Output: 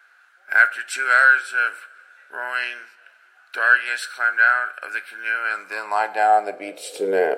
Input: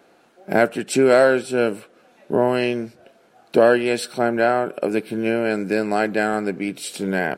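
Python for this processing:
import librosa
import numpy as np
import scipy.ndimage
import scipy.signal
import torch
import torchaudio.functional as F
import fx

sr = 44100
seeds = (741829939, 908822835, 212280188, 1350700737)

y = fx.rev_double_slope(x, sr, seeds[0], early_s=0.45, late_s=3.0, knee_db=-19, drr_db=12.5)
y = fx.filter_sweep_highpass(y, sr, from_hz=1500.0, to_hz=460.0, start_s=5.3, end_s=7.02, q=6.5)
y = F.gain(torch.from_numpy(y), -4.0).numpy()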